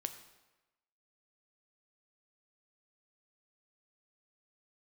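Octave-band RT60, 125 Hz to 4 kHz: 0.95, 1.0, 1.1, 1.1, 1.0, 0.90 s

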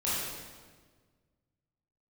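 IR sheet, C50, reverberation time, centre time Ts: -3.0 dB, 1.5 s, 0.11 s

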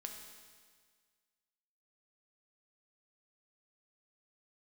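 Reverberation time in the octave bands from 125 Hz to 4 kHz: 1.7, 1.7, 1.7, 1.7, 1.7, 1.7 s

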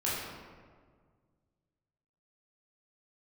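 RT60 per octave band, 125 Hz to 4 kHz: 2.5, 2.1, 1.8, 1.6, 1.3, 0.90 s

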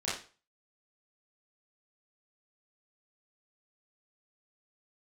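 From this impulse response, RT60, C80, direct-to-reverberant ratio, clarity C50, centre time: 0.35 s, 9.5 dB, -10.0 dB, 2.5 dB, 46 ms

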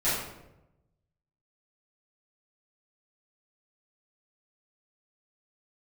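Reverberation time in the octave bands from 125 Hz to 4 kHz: 1.4, 1.1, 1.0, 0.80, 0.70, 0.55 s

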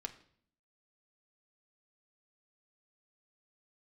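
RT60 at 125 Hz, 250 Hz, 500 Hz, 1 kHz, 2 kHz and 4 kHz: 0.80, 0.85, 0.65, 0.55, 0.55, 0.50 s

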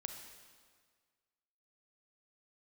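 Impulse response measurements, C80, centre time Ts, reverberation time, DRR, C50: 7.0 dB, 39 ms, 1.7 s, 4.5 dB, 5.5 dB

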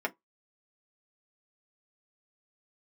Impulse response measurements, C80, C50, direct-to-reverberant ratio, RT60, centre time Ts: 38.5 dB, 27.0 dB, 0.5 dB, 0.15 s, 5 ms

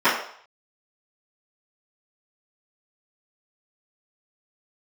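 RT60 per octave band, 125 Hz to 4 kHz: 0.30, 0.40, 0.55, 0.65, 0.60, 0.60 s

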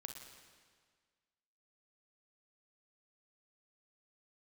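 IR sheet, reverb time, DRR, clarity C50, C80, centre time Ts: 1.7 s, 3.0 dB, 4.0 dB, 5.5 dB, 53 ms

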